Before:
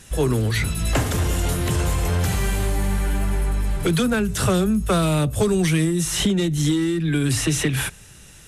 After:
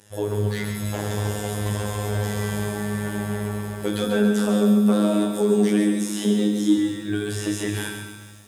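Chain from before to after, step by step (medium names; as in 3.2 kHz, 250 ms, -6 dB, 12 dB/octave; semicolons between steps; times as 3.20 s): reverberation RT60 1.1 s, pre-delay 6 ms, DRR 6.5 dB; robot voice 104 Hz; high-pass 48 Hz; high-order bell 590 Hz +9 dB; peak limiter -6.5 dBFS, peak gain reduction 8 dB; 4.04–6.78 s: resonant low shelf 160 Hz -14 dB, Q 3; flutter echo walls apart 3.4 m, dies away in 0.23 s; level rider; bit-crushed delay 139 ms, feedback 55%, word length 7-bit, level -7 dB; trim -8.5 dB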